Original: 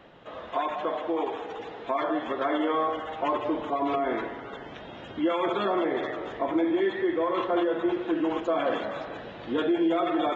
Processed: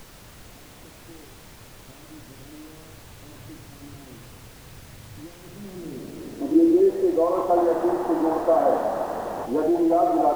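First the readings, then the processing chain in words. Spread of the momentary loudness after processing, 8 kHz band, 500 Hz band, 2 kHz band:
19 LU, no reading, +4.0 dB, -8.5 dB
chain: painted sound noise, 7.57–9.46 s, 210–2000 Hz -35 dBFS; low-pass sweep 110 Hz -> 760 Hz, 5.46–7.32 s; added noise pink -48 dBFS; trim +1.5 dB

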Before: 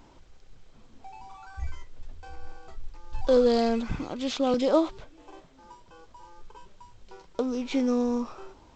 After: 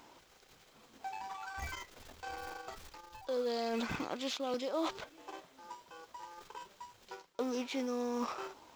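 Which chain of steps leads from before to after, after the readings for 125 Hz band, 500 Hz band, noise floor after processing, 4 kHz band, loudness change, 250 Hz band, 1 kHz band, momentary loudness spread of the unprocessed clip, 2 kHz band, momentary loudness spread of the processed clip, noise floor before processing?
-11.5 dB, -11.5 dB, -64 dBFS, -4.5 dB, -13.0 dB, -12.0 dB, -5.0 dB, 19 LU, -1.0 dB, 16 LU, -55 dBFS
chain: companding laws mixed up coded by A; high-pass 610 Hz 6 dB/octave; reverse; compression 8:1, threshold -43 dBFS, peak gain reduction 21.5 dB; reverse; trim +9.5 dB

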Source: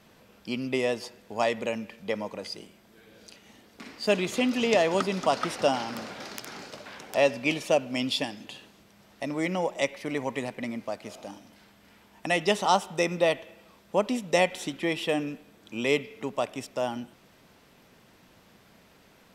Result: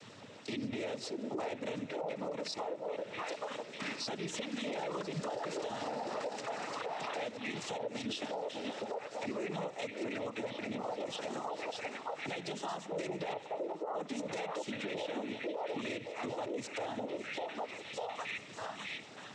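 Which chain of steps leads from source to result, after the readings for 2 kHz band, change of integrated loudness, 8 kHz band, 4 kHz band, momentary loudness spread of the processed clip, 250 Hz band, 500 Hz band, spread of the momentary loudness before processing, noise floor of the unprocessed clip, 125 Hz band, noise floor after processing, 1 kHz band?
-10.0 dB, -11.0 dB, -8.5 dB, -9.0 dB, 3 LU, -9.5 dB, -10.0 dB, 17 LU, -59 dBFS, -9.0 dB, -51 dBFS, -8.5 dB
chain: coarse spectral quantiser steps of 15 dB; repeats whose band climbs or falls 600 ms, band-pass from 460 Hz, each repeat 0.7 oct, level -3 dB; compression 5:1, threshold -39 dBFS, peak gain reduction 19.5 dB; hum notches 50/100/150/200/250 Hz; noise-vocoded speech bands 12; peak limiter -35.5 dBFS, peak gain reduction 10 dB; trim +6 dB

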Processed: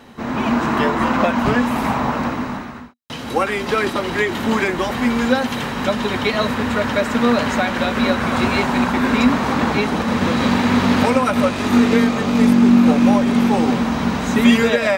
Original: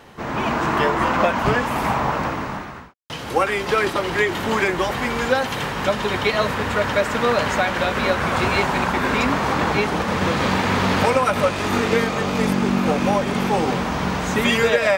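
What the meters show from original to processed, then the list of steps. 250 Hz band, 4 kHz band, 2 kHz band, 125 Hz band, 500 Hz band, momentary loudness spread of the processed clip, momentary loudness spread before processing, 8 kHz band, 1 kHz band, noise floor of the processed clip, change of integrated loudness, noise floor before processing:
+8.5 dB, +1.0 dB, 0.0 dB, +1.0 dB, +0.5 dB, 8 LU, 5 LU, 0.0 dB, 0.0 dB, -29 dBFS, +3.0 dB, -31 dBFS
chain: small resonant body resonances 240/3900 Hz, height 13 dB, ringing for 100 ms

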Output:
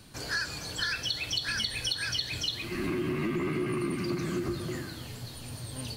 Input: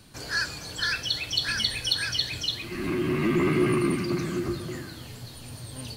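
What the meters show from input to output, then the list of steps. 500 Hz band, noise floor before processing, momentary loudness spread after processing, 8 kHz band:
-5.5 dB, -43 dBFS, 11 LU, -2.0 dB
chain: compression 10:1, threshold -27 dBFS, peak gain reduction 9.5 dB

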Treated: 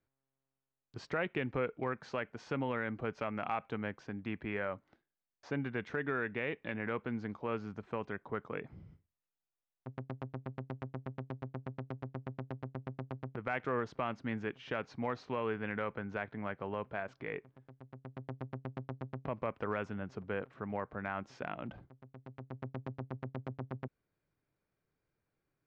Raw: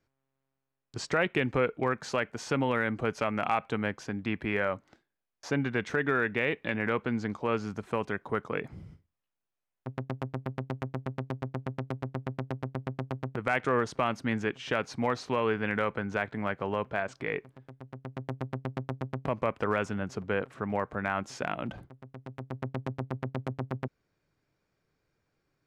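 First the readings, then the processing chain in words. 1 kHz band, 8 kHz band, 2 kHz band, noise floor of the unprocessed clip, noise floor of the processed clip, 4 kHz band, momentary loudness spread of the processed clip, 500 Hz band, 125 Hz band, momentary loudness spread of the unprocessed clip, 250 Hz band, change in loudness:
-8.0 dB, under -15 dB, -8.5 dB, -85 dBFS, under -85 dBFS, -11.0 dB, 11 LU, -7.5 dB, -7.0 dB, 11 LU, -7.0 dB, -7.5 dB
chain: distance through air 170 m; trim -7 dB

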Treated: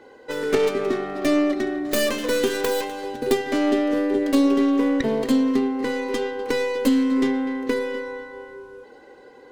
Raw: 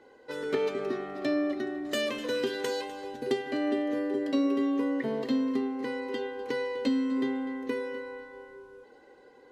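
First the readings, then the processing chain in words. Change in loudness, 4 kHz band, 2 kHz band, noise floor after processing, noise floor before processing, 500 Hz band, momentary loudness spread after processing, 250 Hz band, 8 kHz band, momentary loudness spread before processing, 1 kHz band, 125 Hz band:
+8.5 dB, +7.5 dB, +8.0 dB, -47 dBFS, -56 dBFS, +8.5 dB, 10 LU, +8.5 dB, no reading, 10 LU, +8.5 dB, +9.0 dB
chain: tracing distortion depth 0.37 ms; trim +8.5 dB

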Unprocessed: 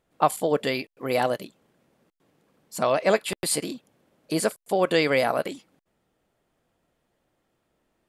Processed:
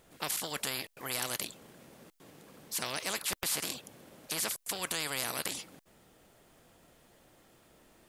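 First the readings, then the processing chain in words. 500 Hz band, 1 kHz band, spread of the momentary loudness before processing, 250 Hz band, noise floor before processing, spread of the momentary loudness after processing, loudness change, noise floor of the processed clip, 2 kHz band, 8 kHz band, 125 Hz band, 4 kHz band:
-20.0 dB, -15.0 dB, 13 LU, -16.5 dB, -75 dBFS, 10 LU, -9.5 dB, -65 dBFS, -8.0 dB, -1.0 dB, -12.5 dB, -2.0 dB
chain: treble shelf 3.9 kHz +7.5 dB; spectrum-flattening compressor 4:1; trim -6.5 dB

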